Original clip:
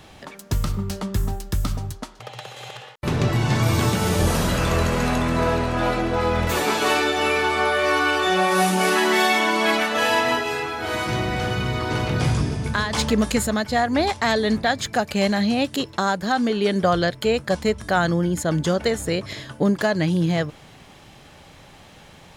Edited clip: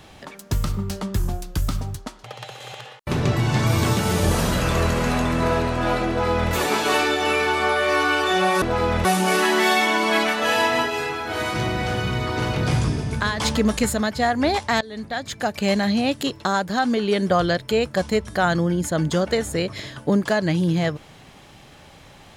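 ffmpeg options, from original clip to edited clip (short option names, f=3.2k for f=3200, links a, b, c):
-filter_complex "[0:a]asplit=6[a][b][c][d][e][f];[a]atrim=end=1.194[g];[b]atrim=start=1.19:end=1.58,asetpts=PTS-STARTPTS,asetrate=40131,aresample=44100[h];[c]atrim=start=1.576:end=8.582[i];[d]atrim=start=6.048:end=6.482[j];[e]atrim=start=8.578:end=14.34,asetpts=PTS-STARTPTS,afade=t=out:st=5.758:d=0.004:c=hsin:silence=0.0841395[k];[f]atrim=start=14.34,asetpts=PTS-STARTPTS,afade=t=in:d=0.86:silence=0.0841395[l];[g][h]acrossfade=d=0.004:c1=hsin:c2=hsin[m];[m][i]acrossfade=d=0.004:c1=hsin:c2=hsin[n];[n][j]acrossfade=d=0.004:c1=hsin:c2=hsin[o];[k][l]concat=n=2:v=0:a=1[p];[o][p]acrossfade=d=0.004:c1=hsin:c2=hsin"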